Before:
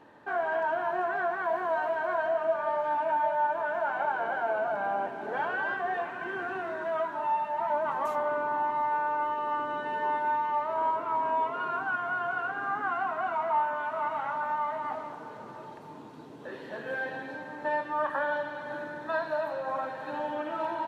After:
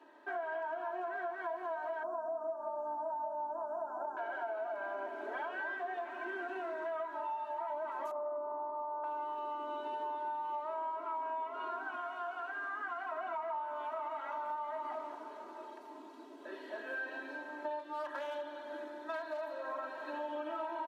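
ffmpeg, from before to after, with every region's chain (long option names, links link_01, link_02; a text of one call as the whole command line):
ffmpeg -i in.wav -filter_complex "[0:a]asettb=1/sr,asplit=3[link_01][link_02][link_03];[link_01]atrim=end=2.034[link_04];[link_02]atrim=start=2.03:end=4.17,asetpts=PTS-STARTPTS,afade=type=in:duration=0.004:curve=qsin,afade=type=out:start_time=2.136:duration=0.004:curve=qsin,aeval=exprs='val(0)+0.0126*(sin(2*PI*60*n/s)+sin(2*PI*2*60*n/s)/2+sin(2*PI*3*60*n/s)/3+sin(2*PI*4*60*n/s)/4+sin(2*PI*5*60*n/s)/5)':channel_layout=same,asuperstop=centerf=2700:order=8:qfactor=0.64[link_05];[link_03]atrim=start=4.166[link_06];[link_04][link_05]acrossfade=duration=0.004:curve1=hsin:curve2=qsin[link_07];[link_07][link_06]acrossfade=duration=0.004:curve1=qsin:curve2=hsin,asettb=1/sr,asplit=3[link_08][link_09][link_10];[link_08]atrim=end=8.114[link_11];[link_09]atrim=start=8.11:end=9.04,asetpts=PTS-STARTPTS,afade=type=in:duration=0.004:curve=qsin,afade=type=out:start_time=0.926:duration=0.004:curve=qsin,lowpass=frequency=1200:width=0.5412,lowpass=frequency=1200:width=1.3066,aecho=1:1:1.6:0.36,atrim=end_sample=41013[link_12];[link_10]atrim=start=9.036[link_13];[link_11][link_12]acrossfade=duration=0.004:curve1=hsin:curve2=qsin[link_14];[link_14][link_13]acrossfade=duration=0.004:curve1=qsin:curve2=hsin,asettb=1/sr,asplit=3[link_15][link_16][link_17];[link_15]atrim=end=12.014[link_18];[link_16]atrim=start=12.01:end=13.12,asetpts=PTS-STARTPTS,afade=type=in:duration=0.004:curve=qsin,afade=type=out:start_time=1.106:duration=0.004:curve=qsin,lowshelf=frequency=480:gain=-9,aeval=exprs='val(0)+0.00126*(sin(2*PI*60*n/s)+sin(2*PI*2*60*n/s)/2+sin(2*PI*3*60*n/s)/3+sin(2*PI*4*60*n/s)/4+sin(2*PI*5*60*n/s)/5)':channel_layout=same[link_19];[link_17]atrim=start=13.116[link_20];[link_18][link_19]acrossfade=duration=0.004:curve1=hsin:curve2=qsin[link_21];[link_21][link_20]acrossfade=duration=0.004:curve1=qsin:curve2=hsin,asettb=1/sr,asplit=3[link_22][link_23][link_24];[link_22]atrim=end=17.794[link_25];[link_23]atrim=start=17.79:end=19.6,asetpts=PTS-STARTPTS,afade=type=in:duration=0.004:curve=qsin,afade=type=out:start_time=1.806:duration=0.004:curve=qsin,equalizer=frequency=1000:width_type=o:width=2.7:gain=-3.5,aeval=exprs='clip(val(0),-1,0.0299)':channel_layout=same[link_26];[link_24]atrim=start=19.596[link_27];[link_25][link_26]acrossfade=duration=0.004:curve1=hsin:curve2=qsin[link_28];[link_28][link_27]acrossfade=duration=0.004:curve1=qsin:curve2=hsin,highpass=frequency=290:width=0.5412,highpass=frequency=290:width=1.3066,aecho=1:1:3.1:0.96,acompressor=threshold=-29dB:ratio=6,volume=-7dB" out.wav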